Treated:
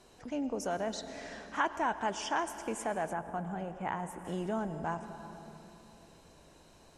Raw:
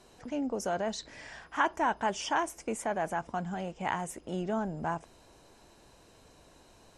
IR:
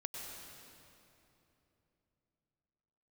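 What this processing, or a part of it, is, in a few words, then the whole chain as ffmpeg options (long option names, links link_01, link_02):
compressed reverb return: -filter_complex "[0:a]asplit=2[link_01][link_02];[1:a]atrim=start_sample=2205[link_03];[link_02][link_03]afir=irnorm=-1:irlink=0,acompressor=threshold=-33dB:ratio=6,volume=-2dB[link_04];[link_01][link_04]amix=inputs=2:normalize=0,asettb=1/sr,asplit=3[link_05][link_06][link_07];[link_05]atrim=end=3.134[link_08];[link_06]atrim=start=3.13:end=4.25,asetpts=PTS-STARTPTS,afade=type=in:duration=0.004:curve=qsin,afade=type=out:start_time=1.116:duration=0.004:curve=qsin,equalizer=frequency=5100:width_type=o:width=1.9:gain=-11.5[link_09];[link_07]atrim=start=4.246[link_10];[link_08][link_09]acrossfade=duration=0.004:curve1=hsin:curve2=qsin[link_11];[link_11][link_10]acrossfade=duration=0.004:curve1=qsin:curve2=hsin,volume=-5dB"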